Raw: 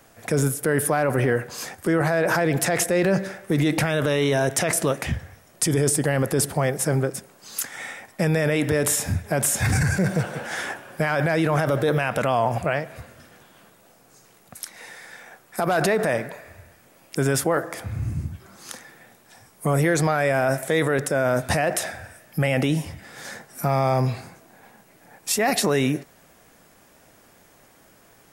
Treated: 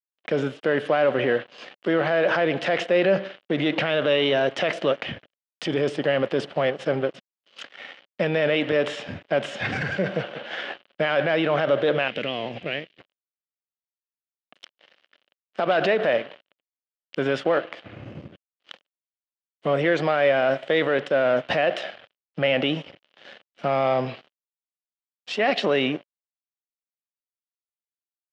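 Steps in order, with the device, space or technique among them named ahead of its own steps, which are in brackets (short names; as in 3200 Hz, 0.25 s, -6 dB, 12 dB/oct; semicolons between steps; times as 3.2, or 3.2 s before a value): blown loudspeaker (crossover distortion -36.5 dBFS; speaker cabinet 230–3900 Hz, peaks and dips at 570 Hz +6 dB, 930 Hz -4 dB, 3000 Hz +10 dB); 12.08–13 band shelf 910 Hz -12 dB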